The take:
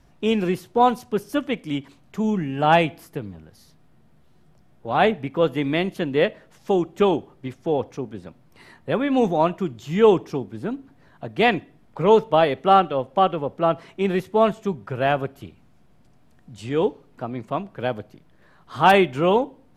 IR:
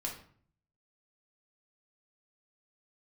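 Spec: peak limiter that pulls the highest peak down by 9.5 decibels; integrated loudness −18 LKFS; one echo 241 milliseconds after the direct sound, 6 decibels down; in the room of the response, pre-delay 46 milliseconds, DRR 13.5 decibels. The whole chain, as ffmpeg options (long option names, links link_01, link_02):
-filter_complex "[0:a]alimiter=limit=-12dB:level=0:latency=1,aecho=1:1:241:0.501,asplit=2[link_01][link_02];[1:a]atrim=start_sample=2205,adelay=46[link_03];[link_02][link_03]afir=irnorm=-1:irlink=0,volume=-14.5dB[link_04];[link_01][link_04]amix=inputs=2:normalize=0,volume=6.5dB"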